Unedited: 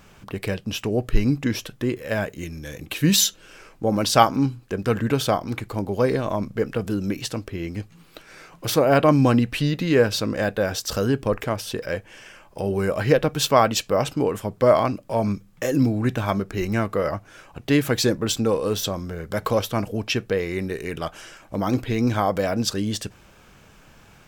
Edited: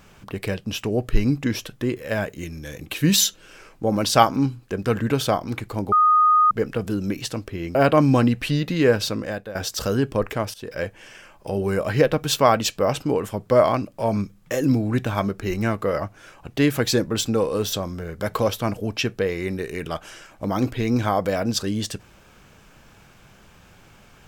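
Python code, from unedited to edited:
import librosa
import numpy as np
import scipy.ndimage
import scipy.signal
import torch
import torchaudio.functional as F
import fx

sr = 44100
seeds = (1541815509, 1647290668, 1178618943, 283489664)

y = fx.edit(x, sr, fx.bleep(start_s=5.92, length_s=0.59, hz=1240.0, db=-12.5),
    fx.cut(start_s=7.75, length_s=1.11),
    fx.fade_out_to(start_s=10.14, length_s=0.52, floor_db=-15.5),
    fx.fade_in_from(start_s=11.65, length_s=0.26, floor_db=-18.0), tone=tone)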